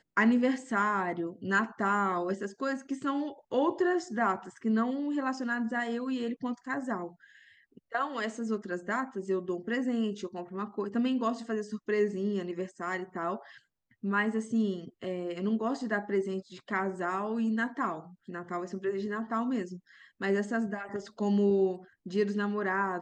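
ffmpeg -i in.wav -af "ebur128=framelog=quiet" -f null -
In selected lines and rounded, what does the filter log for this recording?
Integrated loudness:
  I:         -31.6 LUFS
  Threshold: -41.9 LUFS
Loudness range:
  LRA:         3.7 LU
  Threshold: -52.4 LUFS
  LRA low:   -34.3 LUFS
  LRA high:  -30.6 LUFS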